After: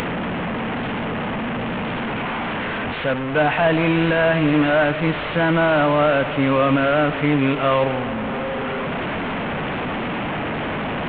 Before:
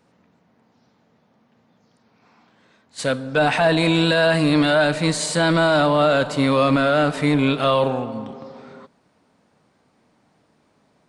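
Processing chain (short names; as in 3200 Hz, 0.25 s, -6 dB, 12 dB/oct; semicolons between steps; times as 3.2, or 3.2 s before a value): delta modulation 16 kbps, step -18.5 dBFS; upward compressor, threshold -28 dBFS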